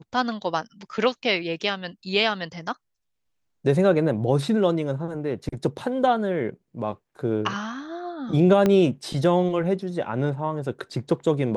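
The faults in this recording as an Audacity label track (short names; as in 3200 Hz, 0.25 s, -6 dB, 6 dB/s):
8.660000	8.660000	pop -9 dBFS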